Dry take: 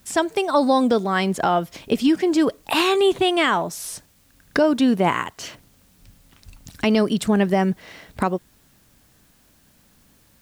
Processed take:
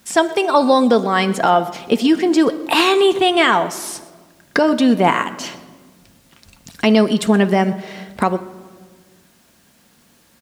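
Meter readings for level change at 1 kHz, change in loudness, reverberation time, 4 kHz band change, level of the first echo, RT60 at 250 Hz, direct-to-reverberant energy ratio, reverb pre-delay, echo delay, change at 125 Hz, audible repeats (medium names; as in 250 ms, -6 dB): +5.5 dB, +4.5 dB, 1.5 s, +5.0 dB, -20.0 dB, 2.0 s, 8.5 dB, 4 ms, 124 ms, +3.0 dB, 1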